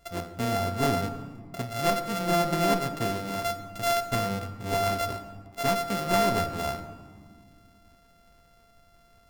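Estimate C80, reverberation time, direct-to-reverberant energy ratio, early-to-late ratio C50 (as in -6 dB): 11.5 dB, 1.9 s, 8.0 dB, 10.5 dB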